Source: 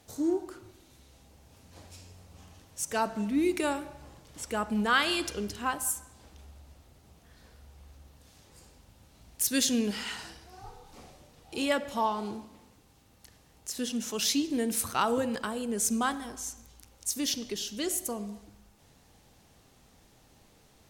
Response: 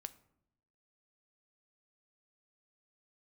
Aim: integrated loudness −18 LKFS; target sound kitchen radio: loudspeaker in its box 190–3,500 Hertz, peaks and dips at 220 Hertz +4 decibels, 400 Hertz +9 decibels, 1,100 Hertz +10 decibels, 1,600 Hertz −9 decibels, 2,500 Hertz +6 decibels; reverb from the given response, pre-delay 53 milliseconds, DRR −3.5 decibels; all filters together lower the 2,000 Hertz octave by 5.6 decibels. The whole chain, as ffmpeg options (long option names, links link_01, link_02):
-filter_complex "[0:a]equalizer=frequency=2000:width_type=o:gain=-5.5,asplit=2[link_01][link_02];[1:a]atrim=start_sample=2205,adelay=53[link_03];[link_02][link_03]afir=irnorm=-1:irlink=0,volume=8dB[link_04];[link_01][link_04]amix=inputs=2:normalize=0,highpass=190,equalizer=frequency=220:width_type=q:width=4:gain=4,equalizer=frequency=400:width_type=q:width=4:gain=9,equalizer=frequency=1100:width_type=q:width=4:gain=10,equalizer=frequency=1600:width_type=q:width=4:gain=-9,equalizer=frequency=2500:width_type=q:width=4:gain=6,lowpass=frequency=3500:width=0.5412,lowpass=frequency=3500:width=1.3066,volume=6dB"